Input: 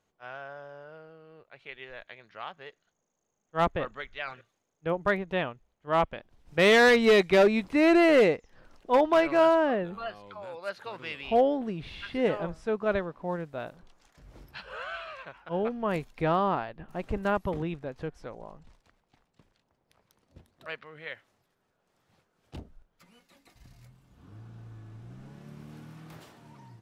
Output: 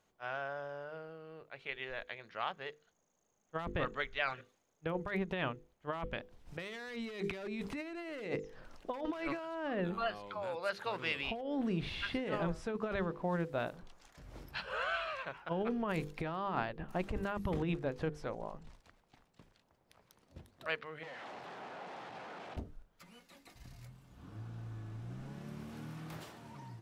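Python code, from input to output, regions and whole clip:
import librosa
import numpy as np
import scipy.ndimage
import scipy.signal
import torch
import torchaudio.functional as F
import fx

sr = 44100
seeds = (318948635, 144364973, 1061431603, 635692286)

y = fx.chain(x, sr, fx.clip_1bit(),
    fx.bandpass_edges(low_hz=210.0, high_hz=2800.0),
    fx.peak_eq(hz=780.0, db=7.5, octaves=0.53), at=(21.03, 22.57))
y = fx.hum_notches(y, sr, base_hz=50, count=10)
y = fx.dynamic_eq(y, sr, hz=600.0, q=0.93, threshold_db=-35.0, ratio=4.0, max_db=-5)
y = fx.over_compress(y, sr, threshold_db=-34.0, ratio=-1.0)
y = F.gain(torch.from_numpy(y), -3.0).numpy()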